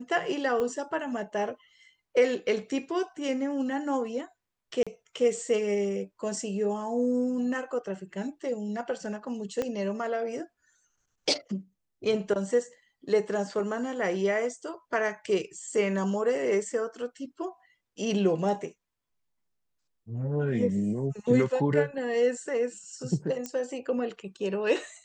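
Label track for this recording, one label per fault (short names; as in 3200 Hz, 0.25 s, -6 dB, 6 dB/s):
0.600000	0.600000	pop -19 dBFS
4.830000	4.870000	gap 36 ms
9.620000	9.620000	pop -17 dBFS
23.460000	23.460000	pop -19 dBFS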